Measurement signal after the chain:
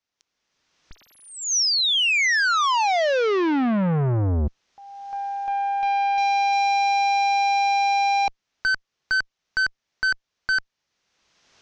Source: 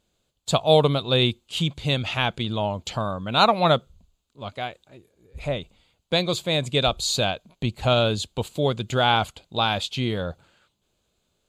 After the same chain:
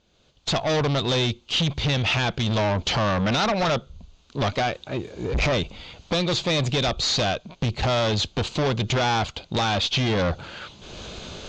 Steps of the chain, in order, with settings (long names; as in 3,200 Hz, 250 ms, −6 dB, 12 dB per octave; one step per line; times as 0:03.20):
camcorder AGC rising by 28 dB per second
tube saturation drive 26 dB, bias 0.25
Chebyshev low-pass filter 6,100 Hz, order 4
level +7 dB